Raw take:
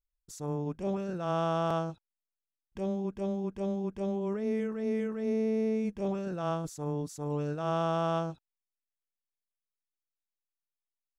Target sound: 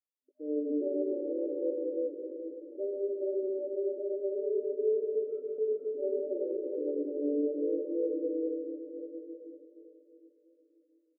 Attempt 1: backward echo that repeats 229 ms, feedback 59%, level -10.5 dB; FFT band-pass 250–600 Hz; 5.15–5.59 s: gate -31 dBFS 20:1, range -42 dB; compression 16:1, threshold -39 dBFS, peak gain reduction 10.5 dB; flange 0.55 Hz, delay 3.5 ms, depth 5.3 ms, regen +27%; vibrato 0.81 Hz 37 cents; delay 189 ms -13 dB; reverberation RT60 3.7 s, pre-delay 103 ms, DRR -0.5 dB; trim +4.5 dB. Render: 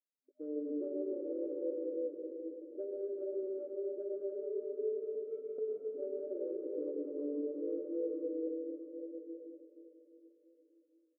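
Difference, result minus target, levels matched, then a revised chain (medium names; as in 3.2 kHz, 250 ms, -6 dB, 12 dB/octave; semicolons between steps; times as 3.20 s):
compression: peak gain reduction +10.5 dB
backward echo that repeats 229 ms, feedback 59%, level -10.5 dB; FFT band-pass 250–600 Hz; 5.15–5.59 s: gate -31 dBFS 20:1, range -42 dB; flange 0.55 Hz, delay 3.5 ms, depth 5.3 ms, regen +27%; vibrato 0.81 Hz 37 cents; delay 189 ms -13 dB; reverberation RT60 3.7 s, pre-delay 103 ms, DRR -0.5 dB; trim +4.5 dB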